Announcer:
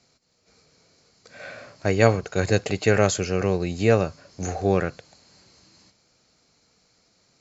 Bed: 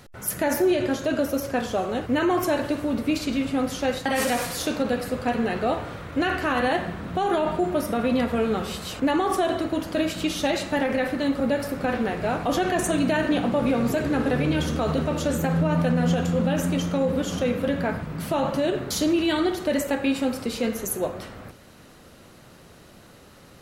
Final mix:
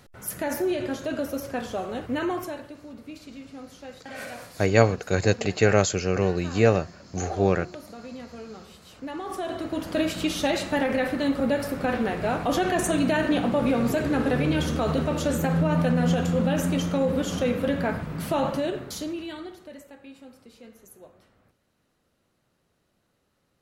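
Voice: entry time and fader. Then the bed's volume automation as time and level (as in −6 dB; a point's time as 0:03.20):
2.75 s, −0.5 dB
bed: 0:02.28 −5 dB
0:02.72 −17 dB
0:08.82 −17 dB
0:09.96 −0.5 dB
0:18.44 −0.5 dB
0:19.90 −22.5 dB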